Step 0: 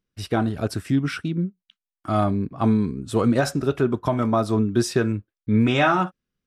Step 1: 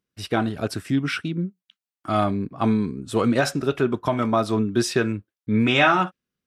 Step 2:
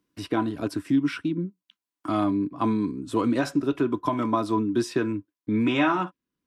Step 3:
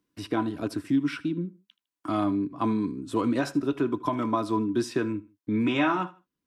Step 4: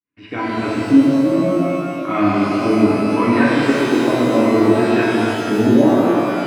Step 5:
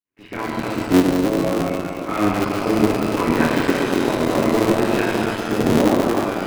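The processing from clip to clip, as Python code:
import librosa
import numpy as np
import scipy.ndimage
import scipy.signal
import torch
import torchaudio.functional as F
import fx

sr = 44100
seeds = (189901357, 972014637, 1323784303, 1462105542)

y1 = fx.highpass(x, sr, hz=130.0, slope=6)
y1 = fx.dynamic_eq(y1, sr, hz=2700.0, q=0.9, threshold_db=-40.0, ratio=4.0, max_db=6)
y2 = fx.small_body(y1, sr, hz=(300.0, 1000.0), ring_ms=70, db=15)
y2 = fx.band_squash(y2, sr, depth_pct=40)
y2 = F.gain(torch.from_numpy(y2), -7.5).numpy()
y3 = fx.echo_feedback(y2, sr, ms=78, feedback_pct=30, wet_db=-20.0)
y3 = F.gain(torch.from_numpy(y3), -2.0).numpy()
y4 = fx.fade_in_head(y3, sr, length_s=0.6)
y4 = fx.filter_lfo_lowpass(y4, sr, shape='square', hz=0.64, low_hz=510.0, high_hz=2300.0, q=3.2)
y4 = fx.rev_shimmer(y4, sr, seeds[0], rt60_s=2.9, semitones=12, shimmer_db=-8, drr_db=-6.5)
y4 = F.gain(torch.from_numpy(y4), 3.5).numpy()
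y5 = fx.cycle_switch(y4, sr, every=3, mode='muted')
y5 = F.gain(torch.from_numpy(y5), -2.0).numpy()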